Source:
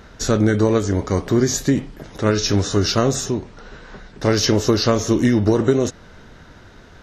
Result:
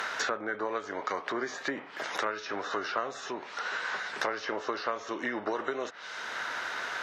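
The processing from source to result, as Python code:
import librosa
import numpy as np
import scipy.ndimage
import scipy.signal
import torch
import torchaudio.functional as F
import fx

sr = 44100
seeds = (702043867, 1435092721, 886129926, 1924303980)

y = fx.env_lowpass_down(x, sr, base_hz=1400.0, full_db=-16.5)
y = scipy.signal.sosfilt(scipy.signal.butter(2, 1100.0, 'highpass', fs=sr, output='sos'), y)
y = fx.band_squash(y, sr, depth_pct=100)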